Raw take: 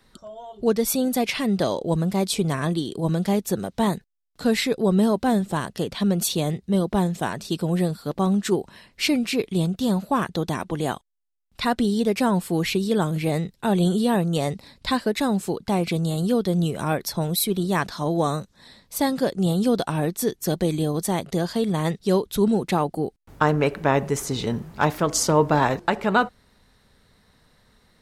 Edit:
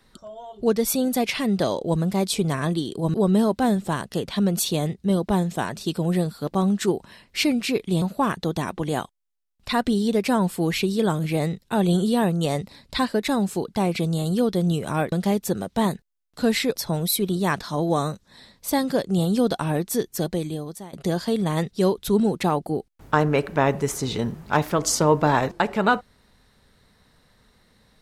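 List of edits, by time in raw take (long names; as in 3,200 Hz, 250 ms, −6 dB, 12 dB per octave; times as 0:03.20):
0:03.14–0:04.78: move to 0:17.04
0:09.66–0:09.94: remove
0:20.34–0:21.21: fade out, to −21.5 dB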